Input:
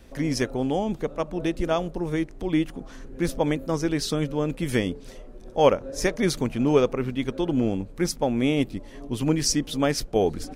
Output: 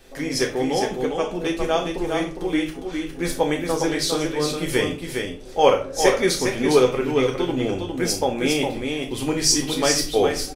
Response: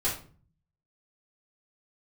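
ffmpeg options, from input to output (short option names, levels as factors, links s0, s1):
-filter_complex "[0:a]bass=f=250:g=-8,treble=f=4000:g=-2,aecho=1:1:408:0.562,asplit=2[s0][s1];[1:a]atrim=start_sample=2205,highshelf=f=2100:g=12[s2];[s1][s2]afir=irnorm=-1:irlink=0,volume=0.299[s3];[s0][s3]amix=inputs=2:normalize=0"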